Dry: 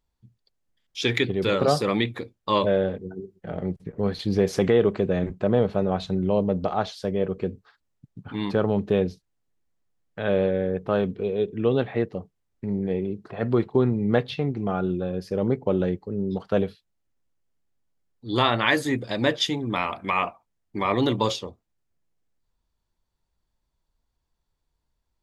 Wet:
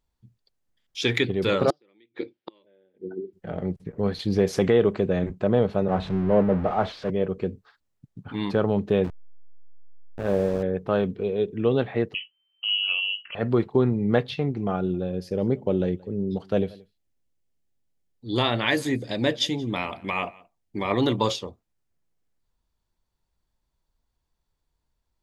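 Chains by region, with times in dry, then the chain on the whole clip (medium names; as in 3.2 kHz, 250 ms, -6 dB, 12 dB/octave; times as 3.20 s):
1.70–3.33 s: inverted gate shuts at -18 dBFS, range -39 dB + cabinet simulation 240–4700 Hz, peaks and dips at 340 Hz +10 dB, 680 Hz -4 dB, 1.1 kHz -8 dB, 2.2 kHz +4 dB, 3.2 kHz +4 dB
5.88–7.10 s: jump at every zero crossing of -25.5 dBFS + low-pass 1.9 kHz + three bands expanded up and down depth 100%
9.04–10.63 s: send-on-delta sampling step -27 dBFS + low-pass 1.1 kHz 6 dB/octave
12.14–13.35 s: frequency inversion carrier 3.1 kHz + doubling 18 ms -9 dB
14.76–20.91 s: peaking EQ 1.2 kHz -7 dB 1.1 oct + delay 176 ms -24 dB
whole clip: none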